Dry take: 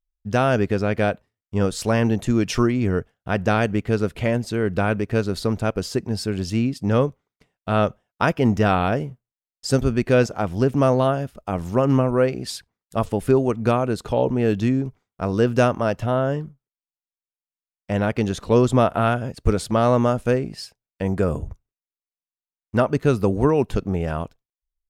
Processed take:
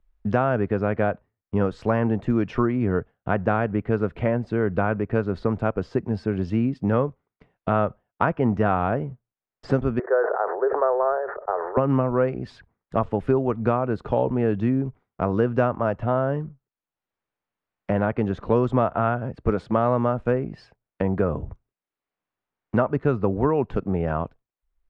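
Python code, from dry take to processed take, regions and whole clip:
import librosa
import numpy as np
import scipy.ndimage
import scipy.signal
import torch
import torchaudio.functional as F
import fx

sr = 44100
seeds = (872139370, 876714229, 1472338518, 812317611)

y = fx.chain(x, sr, fx.cheby1_bandpass(low_hz=390.0, high_hz=1800.0, order=5),
    fx.sustainer(db_per_s=58.0), at=(9.99, 11.77))
y = scipy.signal.sosfilt(scipy.signal.butter(2, 1700.0, 'lowpass', fs=sr, output='sos'), y)
y = fx.dynamic_eq(y, sr, hz=1100.0, q=0.83, threshold_db=-30.0, ratio=4.0, max_db=4)
y = fx.band_squash(y, sr, depth_pct=70)
y = y * 10.0 ** (-3.5 / 20.0)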